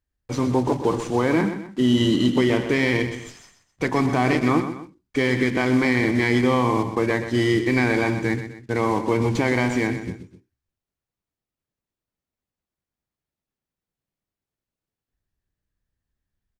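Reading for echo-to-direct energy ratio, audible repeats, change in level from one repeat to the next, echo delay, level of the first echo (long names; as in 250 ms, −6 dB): −10.0 dB, 2, −7.5 dB, 126 ms, −10.5 dB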